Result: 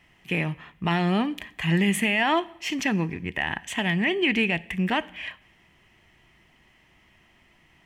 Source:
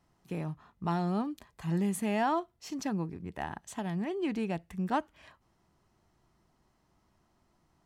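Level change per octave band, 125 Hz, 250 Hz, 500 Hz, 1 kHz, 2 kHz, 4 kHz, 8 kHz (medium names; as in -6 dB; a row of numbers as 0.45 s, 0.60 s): +7.5 dB, +7.0 dB, +6.5 dB, +5.0 dB, +18.0 dB, +18.5 dB, +8.0 dB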